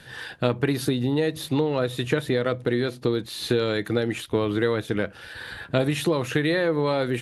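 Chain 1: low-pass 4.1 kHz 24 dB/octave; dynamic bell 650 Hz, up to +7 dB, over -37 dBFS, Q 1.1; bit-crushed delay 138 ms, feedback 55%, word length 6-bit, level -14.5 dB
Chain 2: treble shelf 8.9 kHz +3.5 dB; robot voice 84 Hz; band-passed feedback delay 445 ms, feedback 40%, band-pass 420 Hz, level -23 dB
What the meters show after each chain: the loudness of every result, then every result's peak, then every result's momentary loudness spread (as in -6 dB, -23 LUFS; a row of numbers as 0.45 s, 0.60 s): -22.0 LUFS, -28.0 LUFS; -3.0 dBFS, -6.0 dBFS; 6 LU, 5 LU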